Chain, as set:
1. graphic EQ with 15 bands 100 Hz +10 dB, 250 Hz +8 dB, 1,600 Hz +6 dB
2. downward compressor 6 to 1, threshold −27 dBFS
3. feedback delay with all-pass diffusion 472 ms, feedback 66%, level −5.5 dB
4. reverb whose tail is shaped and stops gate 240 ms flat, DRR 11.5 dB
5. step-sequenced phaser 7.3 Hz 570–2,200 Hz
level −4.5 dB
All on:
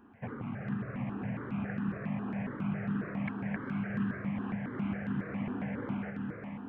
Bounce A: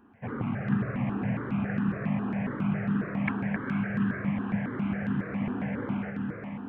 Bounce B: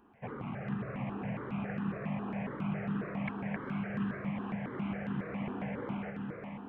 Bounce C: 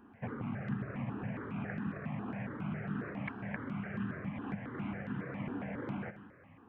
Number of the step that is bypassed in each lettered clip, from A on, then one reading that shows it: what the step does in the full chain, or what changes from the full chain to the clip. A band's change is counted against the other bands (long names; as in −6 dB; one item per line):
2, average gain reduction 5.0 dB
1, 500 Hz band +3.5 dB
3, change in momentary loudness spread −2 LU